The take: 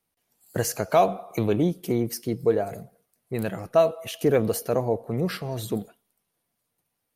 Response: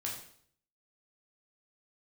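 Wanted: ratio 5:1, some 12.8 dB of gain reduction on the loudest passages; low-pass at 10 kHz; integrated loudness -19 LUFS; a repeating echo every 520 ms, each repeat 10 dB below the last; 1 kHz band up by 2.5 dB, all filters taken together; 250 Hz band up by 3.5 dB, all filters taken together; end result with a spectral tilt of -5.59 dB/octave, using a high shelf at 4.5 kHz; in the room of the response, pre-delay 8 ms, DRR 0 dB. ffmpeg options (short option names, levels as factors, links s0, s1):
-filter_complex "[0:a]lowpass=10000,equalizer=f=250:t=o:g=4.5,equalizer=f=1000:t=o:g=3.5,highshelf=f=4500:g=3,acompressor=threshold=0.0447:ratio=5,aecho=1:1:520|1040|1560|2080:0.316|0.101|0.0324|0.0104,asplit=2[s0][s1];[1:a]atrim=start_sample=2205,adelay=8[s2];[s1][s2]afir=irnorm=-1:irlink=0,volume=0.841[s3];[s0][s3]amix=inputs=2:normalize=0,volume=3.55"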